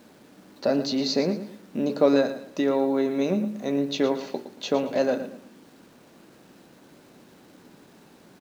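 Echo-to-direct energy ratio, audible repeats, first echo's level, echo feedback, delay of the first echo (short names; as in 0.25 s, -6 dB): -11.5 dB, 3, -12.0 dB, 31%, 0.114 s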